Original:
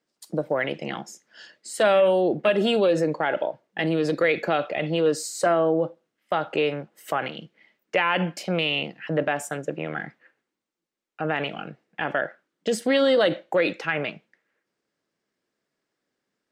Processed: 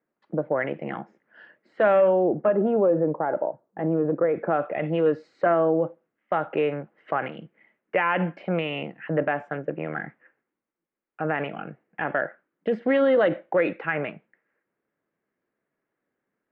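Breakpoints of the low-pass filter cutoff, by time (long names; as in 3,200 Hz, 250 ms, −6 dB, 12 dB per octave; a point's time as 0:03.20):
low-pass filter 24 dB per octave
0:01.96 2,000 Hz
0:02.68 1,200 Hz
0:04.25 1,200 Hz
0:04.89 2,200 Hz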